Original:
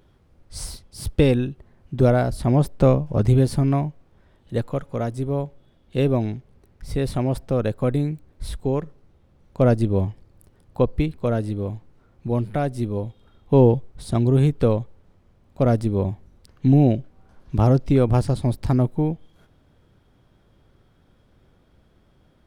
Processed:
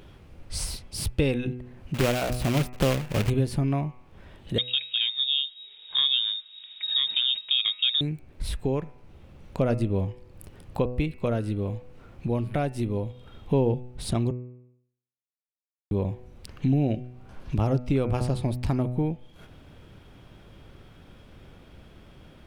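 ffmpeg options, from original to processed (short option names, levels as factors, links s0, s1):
-filter_complex "[0:a]asettb=1/sr,asplit=3[s0][s1][s2];[s0]atrim=end=1.944[s3];[s1]atrim=start=1.94:end=3.3,asetpts=PTS-STARTPTS,afade=t=in:d=0.004:c=qsin,afade=t=out:st=1.356:d=0.004:c=qsin,acrusher=bits=2:mode=log:mix=0:aa=0.000001[s4];[s2]atrim=start=3.296[s5];[s3][s4]acrossfade=d=0.004:c1=hsin:c2=qsin[s6];[s6][s5]acrossfade=d=0.004:c1=qsin:c2=hsin,asettb=1/sr,asplit=3[s7][s8][s9];[s7]atrim=end=4.584[s10];[s8]atrim=start=4.58:end=8.01,asetpts=PTS-STARTPTS,afade=t=in:d=0.004:c=qsin,afade=t=out:st=3.426:d=0.004:c=qsin,lowpass=f=3200:t=q:w=0.5098,lowpass=f=3200:t=q:w=0.6013,lowpass=f=3200:t=q:w=0.9,lowpass=f=3200:t=q:w=2.563,afreqshift=-3800[s11];[s9]atrim=start=8.006[s12];[s10][s11]acrossfade=d=0.004:c1=hsin:c2=qsin[s13];[s13][s12]acrossfade=d=0.004:c1=qsin:c2=hsin,asplit=3[s14][s15][s16];[s14]atrim=end=14.31,asetpts=PTS-STARTPTS,afade=t=out:st=14.306:d=0.004:c=hsin[s17];[s15]atrim=start=14.31:end=15.91,asetpts=PTS-STARTPTS,volume=0[s18];[s16]atrim=start=15.91,asetpts=PTS-STARTPTS,afade=t=in:d=0.004:c=hsin[s19];[s17][s18][s19]concat=n=3:v=0:a=1,equalizer=f=2600:t=o:w=0.6:g=7,bandreject=f=124.1:t=h:w=4,bandreject=f=248.2:t=h:w=4,bandreject=f=372.3:t=h:w=4,bandreject=f=496.4:t=h:w=4,bandreject=f=620.5:t=h:w=4,bandreject=f=744.6:t=h:w=4,bandreject=f=868.7:t=h:w=4,bandreject=f=992.8:t=h:w=4,bandreject=f=1116.9:t=h:w=4,bandreject=f=1241:t=h:w=4,bandreject=f=1365.1:t=h:w=4,bandreject=f=1489.2:t=h:w=4,bandreject=f=1613.3:t=h:w=4,bandreject=f=1737.4:t=h:w=4,bandreject=f=1861.5:t=h:w=4,bandreject=f=1985.6:t=h:w=4,bandreject=f=2109.7:t=h:w=4,bandreject=f=2233.8:t=h:w=4,bandreject=f=2357.9:t=h:w=4,bandreject=f=2482:t=h:w=4,bandreject=f=2606.1:t=h:w=4,bandreject=f=2730.2:t=h:w=4,acompressor=threshold=0.00794:ratio=2,volume=2.66"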